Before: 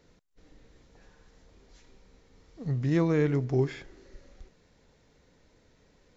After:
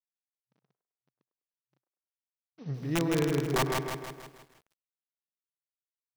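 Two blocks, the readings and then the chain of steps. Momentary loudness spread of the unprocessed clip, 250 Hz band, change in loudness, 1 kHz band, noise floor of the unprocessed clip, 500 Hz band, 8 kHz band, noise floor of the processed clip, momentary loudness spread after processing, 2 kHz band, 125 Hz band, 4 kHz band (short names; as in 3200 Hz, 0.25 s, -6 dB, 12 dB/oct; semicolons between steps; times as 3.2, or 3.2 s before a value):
13 LU, -2.5 dB, -2.5 dB, +8.0 dB, -64 dBFS, -2.0 dB, n/a, under -85 dBFS, 17 LU, +4.0 dB, -5.0 dB, +11.0 dB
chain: level-crossing sampler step -45.5 dBFS; FFT band-pass 120–6200 Hz; gate -55 dBFS, range -10 dB; dynamic EQ 380 Hz, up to +5 dB, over -39 dBFS, Q 5.7; wrapped overs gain 16.5 dB; band-limited delay 0.101 s, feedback 36%, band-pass 820 Hz, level -11.5 dB; lo-fi delay 0.16 s, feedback 55%, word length 9-bit, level -3.5 dB; gain -5 dB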